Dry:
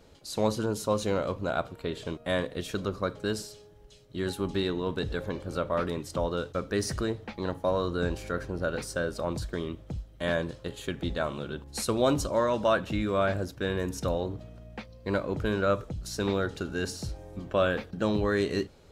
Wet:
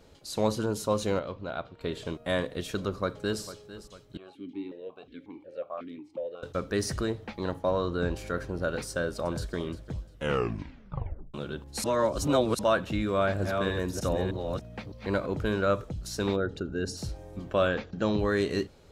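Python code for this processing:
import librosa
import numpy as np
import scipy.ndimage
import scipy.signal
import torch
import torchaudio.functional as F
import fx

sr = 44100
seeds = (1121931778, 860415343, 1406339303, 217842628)

y = fx.ladder_lowpass(x, sr, hz=5300.0, resonance_pct=25, at=(1.19, 1.81))
y = fx.echo_throw(y, sr, start_s=2.86, length_s=0.56, ms=450, feedback_pct=45, wet_db=-14.5)
y = fx.vowel_held(y, sr, hz=5.5, at=(4.17, 6.43))
y = fx.high_shelf(y, sr, hz=fx.line((7.58, 9600.0), (8.15, 6300.0)), db=-10.5, at=(7.58, 8.15), fade=0.02)
y = fx.echo_throw(y, sr, start_s=8.9, length_s=0.68, ms=350, feedback_pct=25, wet_db=-15.5)
y = fx.reverse_delay(y, sr, ms=305, wet_db=-4, at=(13.09, 15.26))
y = fx.envelope_sharpen(y, sr, power=1.5, at=(16.35, 16.96), fade=0.02)
y = fx.brickwall_lowpass(y, sr, high_hz=7500.0, at=(17.68, 18.19))
y = fx.edit(y, sr, fx.tape_stop(start_s=10.09, length_s=1.25),
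    fx.reverse_span(start_s=11.84, length_s=0.75), tone=tone)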